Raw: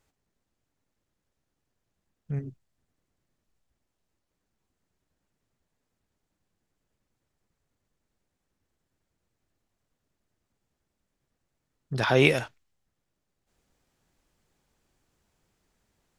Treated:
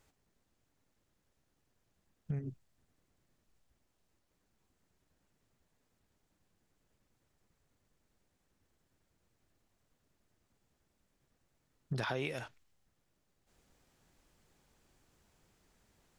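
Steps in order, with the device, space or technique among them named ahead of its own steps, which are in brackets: serial compression, leveller first (compression 1.5:1, threshold -30 dBFS, peak gain reduction 6 dB; compression 8:1, threshold -36 dBFS, peak gain reduction 16 dB); trim +2.5 dB

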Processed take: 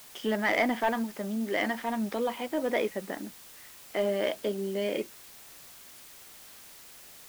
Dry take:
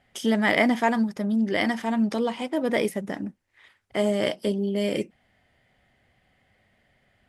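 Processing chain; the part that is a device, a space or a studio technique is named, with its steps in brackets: tape answering machine (band-pass 300–3400 Hz; saturation -14.5 dBFS, distortion -17 dB; wow and flutter; white noise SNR 18 dB); trim -2 dB

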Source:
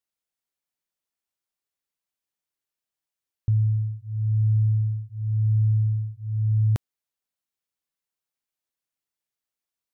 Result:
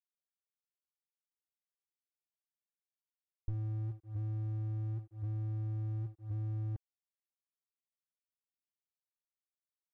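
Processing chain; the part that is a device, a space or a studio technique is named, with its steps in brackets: gate -28 dBFS, range -10 dB; bass shelf 350 Hz -2.5 dB; early transistor amplifier (crossover distortion -56 dBFS; slew-rate limiter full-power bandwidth 1.6 Hz); comb 2.6 ms, depth 46%; trim +1 dB

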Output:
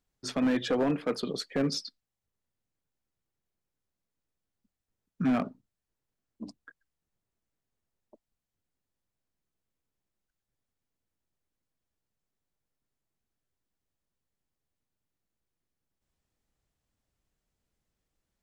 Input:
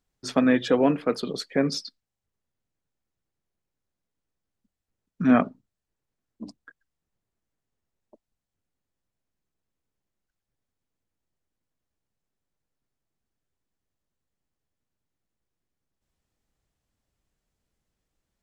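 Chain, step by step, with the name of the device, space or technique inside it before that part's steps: limiter into clipper (peak limiter -13.5 dBFS, peak gain reduction 6.5 dB; hard clipper -19 dBFS, distortion -14 dB); trim -2.5 dB

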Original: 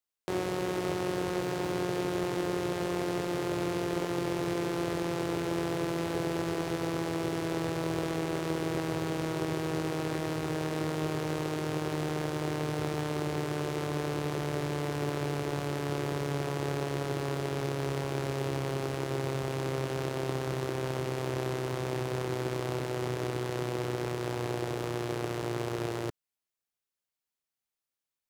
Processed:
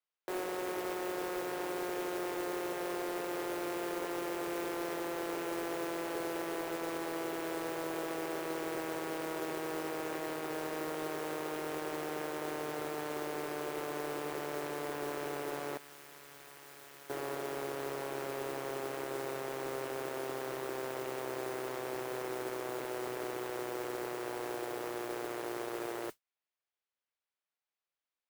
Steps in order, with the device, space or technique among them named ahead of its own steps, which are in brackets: carbon microphone (band-pass 420–3400 Hz; saturation -29.5 dBFS, distortion -15 dB; modulation noise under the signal 13 dB); 15.77–17.10 s: amplifier tone stack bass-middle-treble 5-5-5

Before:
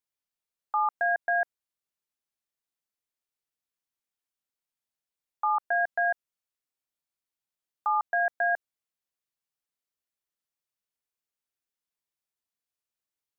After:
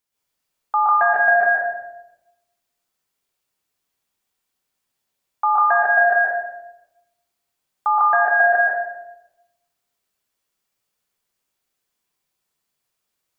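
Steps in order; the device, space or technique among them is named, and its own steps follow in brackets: 1.02–1.42 s: gate with hold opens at -28 dBFS; bathroom (reverberation RT60 0.95 s, pre-delay 118 ms, DRR -5.5 dB); trim +7.5 dB

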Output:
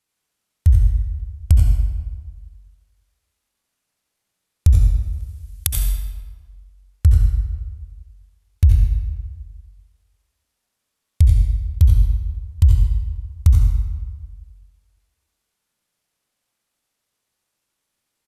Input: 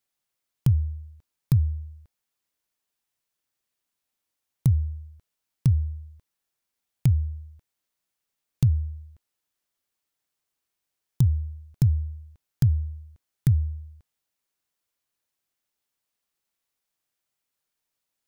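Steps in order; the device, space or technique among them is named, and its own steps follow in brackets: 5.03–5.78 s: tilt EQ +4.5 dB/octave; monster voice (pitch shift -8.5 st; bass shelf 220 Hz +4 dB; delay 88 ms -9 dB; reverberation RT60 1.4 s, pre-delay 63 ms, DRR 1 dB); trim +4 dB

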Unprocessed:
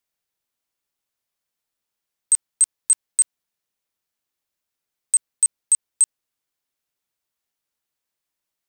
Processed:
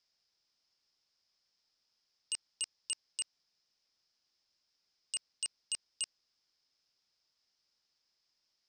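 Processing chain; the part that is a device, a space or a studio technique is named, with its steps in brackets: overdriven synthesiser ladder filter (saturation -23 dBFS, distortion -10 dB; four-pole ladder low-pass 5.4 kHz, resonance 80%); trim +11.5 dB

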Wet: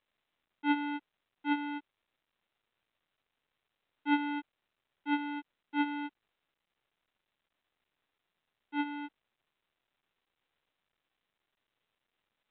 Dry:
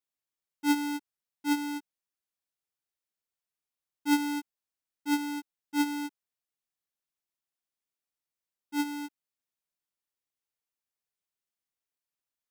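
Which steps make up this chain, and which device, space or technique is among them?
telephone (band-pass 330–3500 Hz; µ-law 64 kbps 8 kHz)

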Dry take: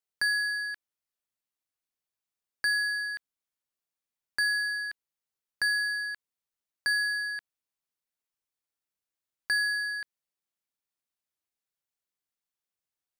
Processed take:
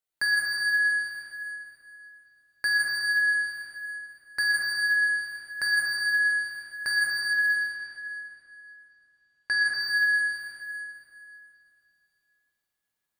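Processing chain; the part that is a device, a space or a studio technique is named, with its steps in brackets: stairwell (reverberation RT60 3.0 s, pre-delay 6 ms, DRR -3.5 dB); band-stop 2.6 kHz, Q 29; 7.33–9.74 s: low-pass 7.3 kHz 12 dB/octave; peaking EQ 5.6 kHz -4.5 dB 0.52 oct; plate-style reverb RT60 1.7 s, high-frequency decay 0.7×, pre-delay 110 ms, DRR 1 dB

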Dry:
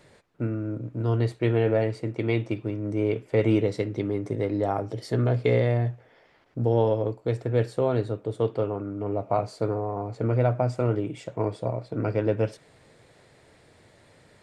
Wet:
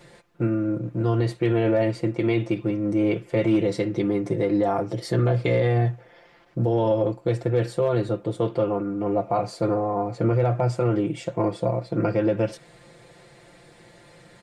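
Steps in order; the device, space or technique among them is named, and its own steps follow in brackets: comb 5.8 ms, depth 84%; clipper into limiter (hard clipper -11 dBFS, distortion -35 dB; peak limiter -16.5 dBFS, peak gain reduction 5.5 dB); trim +3.5 dB

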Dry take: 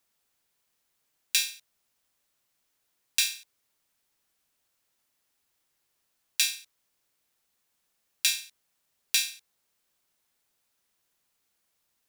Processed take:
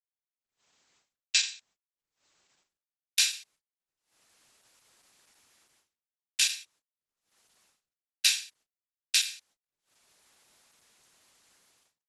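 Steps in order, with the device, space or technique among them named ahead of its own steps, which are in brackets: 8.36–9.32 s: dynamic bell 300 Hz, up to -5 dB, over -56 dBFS, Q 0.78; video call (high-pass 120 Hz 6 dB/octave; level rider gain up to 17 dB; gate -59 dBFS, range -34 dB; Opus 12 kbps 48 kHz)

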